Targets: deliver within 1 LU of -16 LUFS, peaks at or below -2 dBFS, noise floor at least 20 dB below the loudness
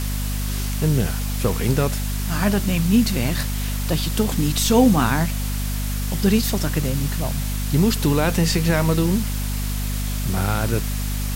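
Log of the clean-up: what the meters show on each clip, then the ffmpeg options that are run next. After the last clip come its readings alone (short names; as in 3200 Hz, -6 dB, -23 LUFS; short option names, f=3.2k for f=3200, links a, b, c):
hum 50 Hz; harmonics up to 250 Hz; hum level -22 dBFS; noise floor -24 dBFS; noise floor target -42 dBFS; loudness -21.5 LUFS; peak -4.0 dBFS; loudness target -16.0 LUFS
-> -af "bandreject=f=50:t=h:w=4,bandreject=f=100:t=h:w=4,bandreject=f=150:t=h:w=4,bandreject=f=200:t=h:w=4,bandreject=f=250:t=h:w=4"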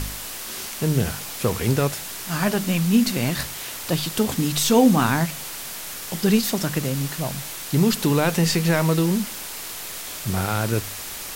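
hum none; noise floor -34 dBFS; noise floor target -43 dBFS
-> -af "afftdn=nr=9:nf=-34"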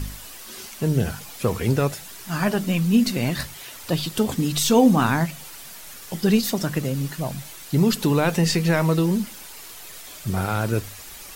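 noise floor -40 dBFS; noise floor target -43 dBFS
-> -af "afftdn=nr=6:nf=-40"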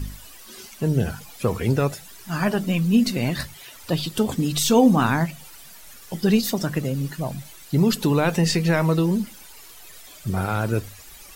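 noise floor -44 dBFS; loudness -22.5 LUFS; peak -6.0 dBFS; loudness target -16.0 LUFS
-> -af "volume=6.5dB,alimiter=limit=-2dB:level=0:latency=1"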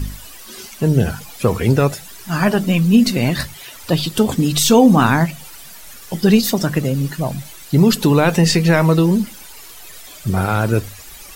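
loudness -16.0 LUFS; peak -2.0 dBFS; noise floor -38 dBFS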